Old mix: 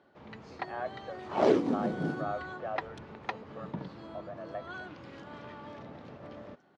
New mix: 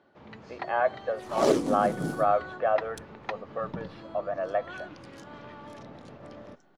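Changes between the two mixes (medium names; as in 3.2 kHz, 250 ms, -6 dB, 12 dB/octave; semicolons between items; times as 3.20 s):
speech +9.5 dB; second sound: remove band-pass 120–3000 Hz; reverb: on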